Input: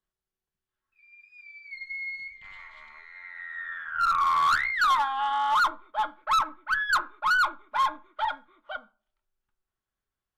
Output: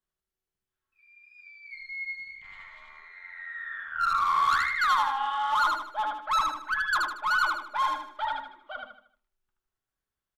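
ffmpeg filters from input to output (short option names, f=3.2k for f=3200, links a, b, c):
-af "aecho=1:1:77|154|231|308|385:0.708|0.283|0.113|0.0453|0.0181,volume=-3dB"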